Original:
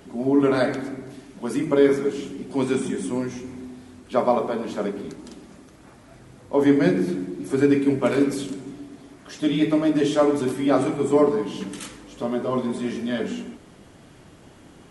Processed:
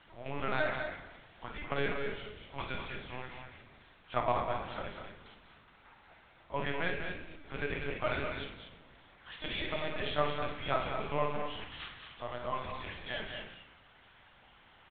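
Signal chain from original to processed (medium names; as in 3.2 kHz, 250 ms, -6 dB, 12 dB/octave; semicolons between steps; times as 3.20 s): rattle on loud lows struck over -26 dBFS, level -29 dBFS; high-pass 950 Hz 12 dB/octave; LPC vocoder at 8 kHz pitch kept; on a send: loudspeakers at several distances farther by 18 m -9 dB, 68 m -8 dB, 81 m -10 dB; on the sum: trim -4 dB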